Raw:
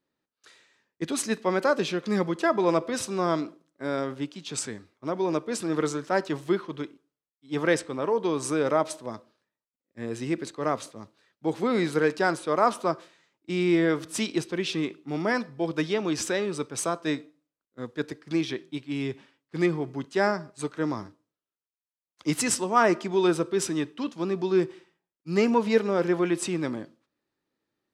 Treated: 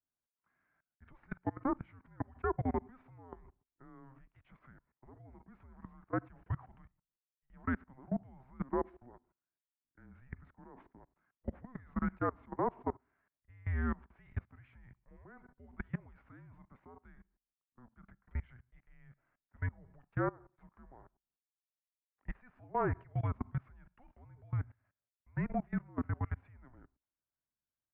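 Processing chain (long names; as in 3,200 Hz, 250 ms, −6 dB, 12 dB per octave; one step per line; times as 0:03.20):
output level in coarse steps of 23 dB
single-sideband voice off tune −260 Hz 310–2,200 Hz
level −7.5 dB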